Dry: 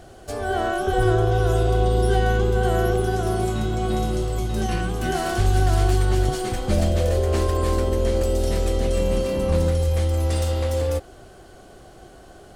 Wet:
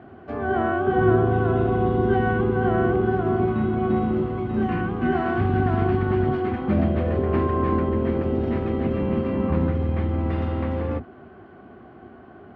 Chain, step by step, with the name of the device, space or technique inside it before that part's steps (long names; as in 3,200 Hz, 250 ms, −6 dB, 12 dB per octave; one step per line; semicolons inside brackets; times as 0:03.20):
sub-octave bass pedal (sub-octave generator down 2 octaves, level 0 dB; loudspeaker in its box 85–2,300 Hz, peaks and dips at 120 Hz −3 dB, 240 Hz +9 dB, 370 Hz +3 dB, 530 Hz −7 dB, 1,100 Hz +4 dB)